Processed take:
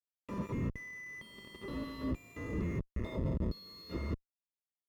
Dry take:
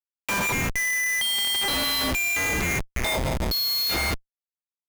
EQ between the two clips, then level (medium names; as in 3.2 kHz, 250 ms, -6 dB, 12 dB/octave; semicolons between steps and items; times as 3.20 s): boxcar filter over 57 samples; high-pass 77 Hz 6 dB/octave; -3.0 dB